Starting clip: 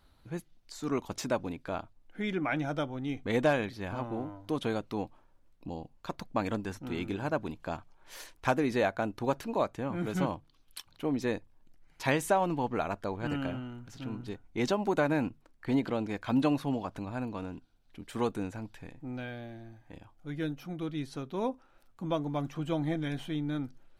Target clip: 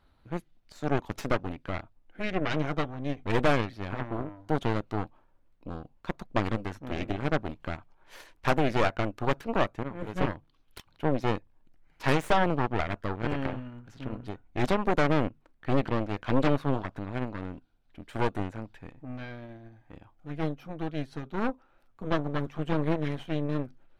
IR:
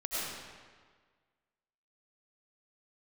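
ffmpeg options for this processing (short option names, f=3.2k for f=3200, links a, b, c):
-filter_complex "[0:a]asettb=1/sr,asplit=3[a][b][c];[a]atrim=end=9.834[d];[b]atrim=start=9.83:end=10.35,asetpts=PTS-STARTPTS,afade=t=in:d=0.004:c=qsin,afade=t=out:st=0.516:d=0.004:c=qsin,agate=range=-33dB:threshold=-28dB:ratio=3:detection=peak[e];[c]atrim=start=10.346[f];[d][e]acrossfade=d=0.004:c1=hsin:c2=qsin[g];[g][f]acrossfade=d=0.004:c1=qsin:c2=hsin,aeval=exprs='0.237*(cos(1*acos(clip(val(0)/0.237,-1,1)))-cos(1*PI/2))+0.0668*(cos(8*acos(clip(val(0)/0.237,-1,1)))-cos(8*PI/2))':c=same,bass=f=250:g=-1,treble=f=4k:g=-10"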